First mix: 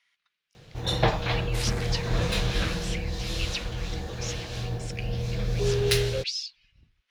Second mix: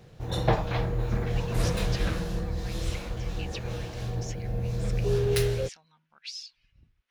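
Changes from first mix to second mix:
first sound: entry −0.55 s
master: add parametric band 3,800 Hz −8.5 dB 2.3 octaves

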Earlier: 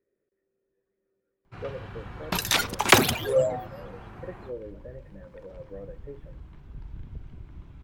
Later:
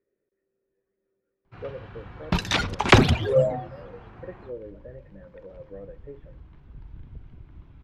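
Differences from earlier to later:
first sound: send off
second sound: remove high-pass filter 410 Hz 6 dB per octave
master: add low-pass filter 4,500 Hz 12 dB per octave

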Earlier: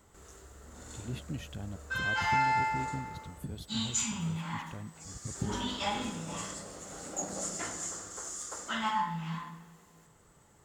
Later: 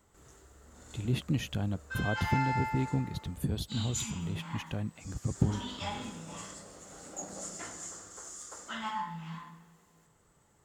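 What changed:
speech +8.5 dB
background −5.0 dB

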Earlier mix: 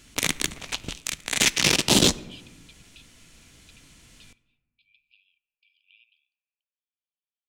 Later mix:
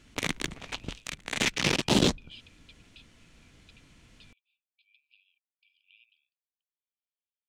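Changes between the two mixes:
background: add low-pass filter 2,300 Hz 6 dB per octave
reverb: off

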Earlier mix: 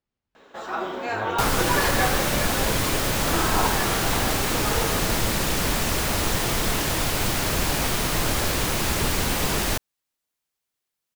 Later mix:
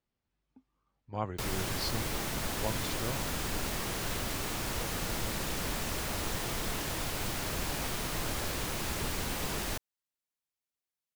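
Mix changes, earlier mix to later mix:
first sound: muted
second sound −11.0 dB
reverb: off

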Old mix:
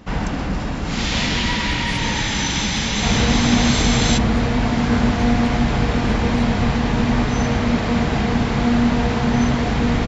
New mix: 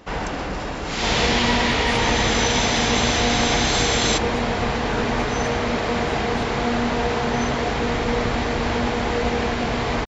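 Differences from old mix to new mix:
second sound: entry −2.00 s
master: add low shelf with overshoot 300 Hz −7 dB, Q 1.5

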